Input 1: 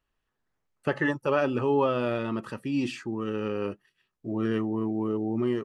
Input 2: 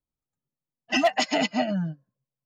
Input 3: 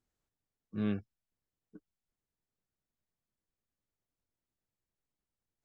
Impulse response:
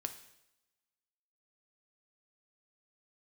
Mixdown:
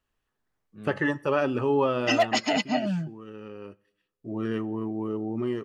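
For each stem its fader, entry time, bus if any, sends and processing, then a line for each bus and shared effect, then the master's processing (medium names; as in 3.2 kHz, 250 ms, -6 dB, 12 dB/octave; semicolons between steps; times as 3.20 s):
2.01 s -2 dB -> 2.70 s -13.5 dB -> 3.69 s -13.5 dB -> 4.36 s -4 dB, 0.00 s, send -9 dB, none
-1.0 dB, 1.15 s, no send, none
-3.0 dB, 0.00 s, no send, auto duck -12 dB, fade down 1.45 s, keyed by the first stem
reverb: on, RT60 0.90 s, pre-delay 3 ms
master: none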